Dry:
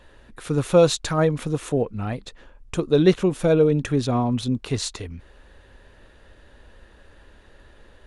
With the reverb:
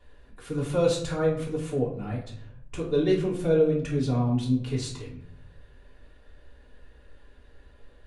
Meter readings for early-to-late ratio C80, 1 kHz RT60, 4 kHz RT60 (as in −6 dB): 10.5 dB, 0.55 s, 0.40 s